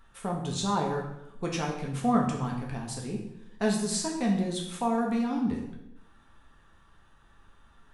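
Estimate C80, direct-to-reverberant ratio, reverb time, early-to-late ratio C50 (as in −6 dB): 8.0 dB, −1.0 dB, 0.90 s, 5.0 dB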